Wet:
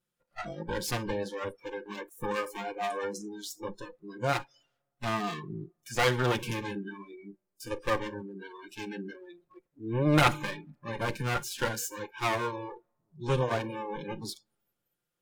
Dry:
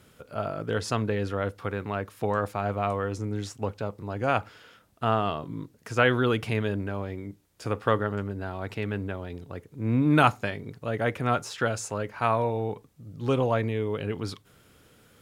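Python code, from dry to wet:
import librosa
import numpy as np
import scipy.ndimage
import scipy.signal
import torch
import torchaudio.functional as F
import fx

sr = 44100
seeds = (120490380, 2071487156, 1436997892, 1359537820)

y = fx.lower_of_two(x, sr, delay_ms=5.7)
y = fx.high_shelf(y, sr, hz=5500.0, db=5.0)
y = fx.rev_freeverb(y, sr, rt60_s=2.0, hf_ratio=0.4, predelay_ms=30, drr_db=16.0)
y = fx.noise_reduce_blind(y, sr, reduce_db=28)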